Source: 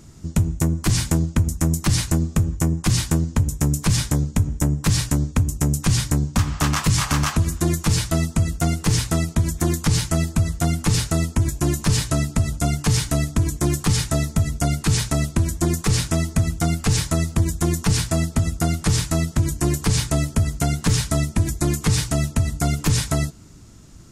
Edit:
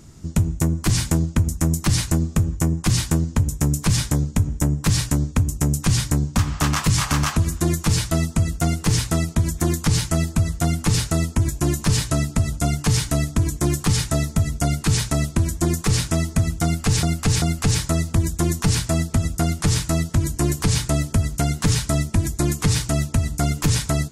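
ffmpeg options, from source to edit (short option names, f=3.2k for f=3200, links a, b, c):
-filter_complex "[0:a]asplit=3[a][b][c];[a]atrim=end=17.032[d];[b]atrim=start=16.638:end=17.032[e];[c]atrim=start=16.638[f];[d][e]acrossfade=d=0.004:c1=hsin:c2=hsin[g];[g][f]acrossfade=d=0.004:c1=hsin:c2=hsin"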